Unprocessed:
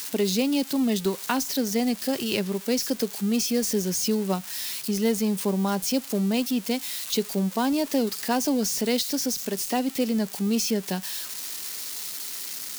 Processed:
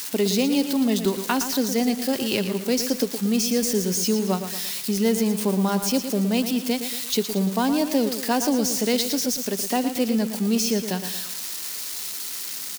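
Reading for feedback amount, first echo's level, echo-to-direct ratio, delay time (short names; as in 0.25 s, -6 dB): 45%, -9.5 dB, -8.5 dB, 0.115 s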